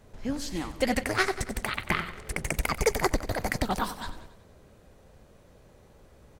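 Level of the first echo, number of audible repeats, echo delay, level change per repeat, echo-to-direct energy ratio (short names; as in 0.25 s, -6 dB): -13.5 dB, 4, 93 ms, -5.5 dB, -12.0 dB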